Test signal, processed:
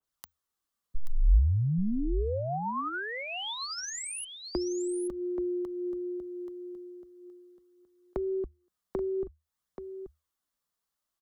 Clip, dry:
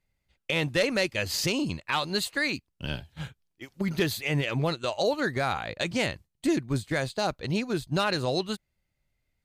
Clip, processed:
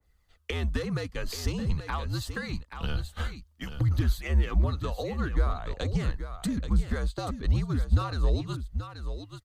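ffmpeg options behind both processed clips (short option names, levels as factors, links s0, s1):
-filter_complex "[0:a]equalizer=f=125:t=o:w=0.33:g=8,equalizer=f=250:t=o:w=0.33:g=3,equalizer=f=1250:t=o:w=0.33:g=8,equalizer=f=2500:t=o:w=0.33:g=-7,aphaser=in_gain=1:out_gain=1:delay=4:decay=0.33:speed=0.51:type=triangular,acrossover=split=170[s0][s1];[s1]acompressor=threshold=0.0112:ratio=6[s2];[s0][s2]amix=inputs=2:normalize=0,afreqshift=-77,aecho=1:1:831:0.335,adynamicequalizer=threshold=0.00251:dfrequency=1700:dqfactor=0.7:tfrequency=1700:tqfactor=0.7:attack=5:release=100:ratio=0.375:range=2:mode=cutabove:tftype=highshelf,volume=2"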